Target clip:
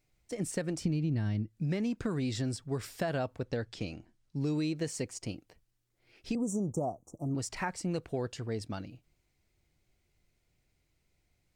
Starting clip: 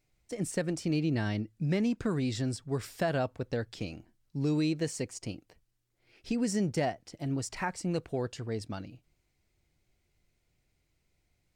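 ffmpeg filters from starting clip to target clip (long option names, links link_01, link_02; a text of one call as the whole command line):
ffmpeg -i in.wav -filter_complex "[0:a]asettb=1/sr,asplit=3[link_01][link_02][link_03];[link_01]atrim=end=0.814[link_04];[link_02]atrim=start=0.81:end=1.48,asetpts=PTS-STARTPTS,afade=type=in:duration=0.004:curve=qsin,afade=type=out:start_time=0.666:duration=0.004:curve=qsin,bass=frequency=250:gain=12,treble=frequency=4000:gain=-1[link_05];[link_03]atrim=start=1.476[link_06];[link_04][link_05]acrossfade=duration=0.004:curve1=hsin:curve2=qsin[link_07];[link_07][link_06]acrossfade=duration=0.004:curve1=qsin:curve2=hsin,asettb=1/sr,asplit=3[link_08][link_09][link_10];[link_08]atrim=end=3.444[link_11];[link_09]atrim=start=3.44:end=4.36,asetpts=PTS-STARTPTS,afade=type=in:duration=0.004:curve=qsin,afade=type=out:start_time=0.916:duration=0.004:curve=qsin,lowpass=9100[link_12];[link_10]atrim=start=4.356[link_13];[link_11][link_12]acrossfade=duration=0.004:curve1=hsin:curve2=qsin[link_14];[link_14][link_13]acrossfade=duration=0.004:curve1=qsin:curve2=hsin,acompressor=threshold=-28dB:ratio=6,asettb=1/sr,asplit=3[link_15][link_16][link_17];[link_15]atrim=end=6.354[link_18];[link_16]atrim=start=6.35:end=7.35,asetpts=PTS-STARTPTS,afade=type=in:duration=0.004:curve=qsin,afade=type=out:start_time=0.996:duration=0.004:curve=qsin,asuperstop=centerf=2800:order=20:qfactor=0.58[link_19];[link_17]atrim=start=7.346[link_20];[link_18][link_19]acrossfade=duration=0.004:curve1=hsin:curve2=qsin[link_21];[link_21][link_20]acrossfade=duration=0.004:curve1=qsin:curve2=hsin" out.wav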